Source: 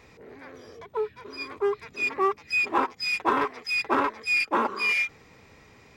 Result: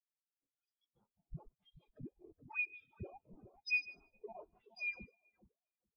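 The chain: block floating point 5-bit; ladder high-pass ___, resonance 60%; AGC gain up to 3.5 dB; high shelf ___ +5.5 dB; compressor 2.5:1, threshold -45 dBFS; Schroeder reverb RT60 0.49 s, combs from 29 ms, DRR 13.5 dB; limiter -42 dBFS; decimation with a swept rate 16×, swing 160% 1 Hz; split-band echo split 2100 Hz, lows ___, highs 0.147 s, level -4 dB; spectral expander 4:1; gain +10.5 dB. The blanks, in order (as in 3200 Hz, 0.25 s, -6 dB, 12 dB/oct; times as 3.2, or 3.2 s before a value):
3000 Hz, 6100 Hz, 0.423 s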